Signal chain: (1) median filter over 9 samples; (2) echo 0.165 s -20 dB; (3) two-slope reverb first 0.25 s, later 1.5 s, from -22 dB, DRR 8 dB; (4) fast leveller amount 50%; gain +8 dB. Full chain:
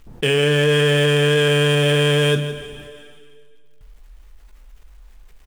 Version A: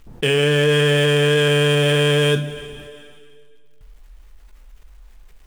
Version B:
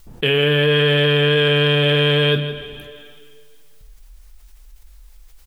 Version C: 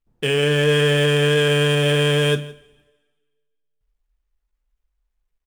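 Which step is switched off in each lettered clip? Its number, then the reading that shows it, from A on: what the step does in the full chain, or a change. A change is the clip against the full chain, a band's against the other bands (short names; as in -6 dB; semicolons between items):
2, momentary loudness spread change +1 LU; 1, 4 kHz band +3.0 dB; 4, momentary loudness spread change -5 LU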